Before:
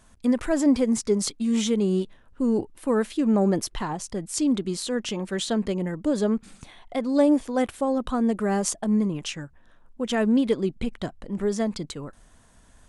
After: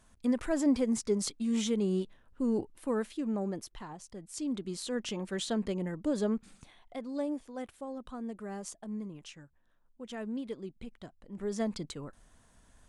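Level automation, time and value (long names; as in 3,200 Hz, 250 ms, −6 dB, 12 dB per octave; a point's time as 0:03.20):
0:02.75 −7 dB
0:03.64 −15 dB
0:04.17 −15 dB
0:04.96 −7 dB
0:06.30 −7 dB
0:07.40 −16.5 dB
0:11.22 −16.5 dB
0:11.62 −6.5 dB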